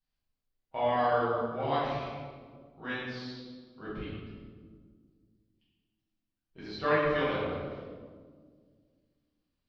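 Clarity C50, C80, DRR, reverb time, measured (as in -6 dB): -2.0 dB, 0.5 dB, -11.0 dB, 1.7 s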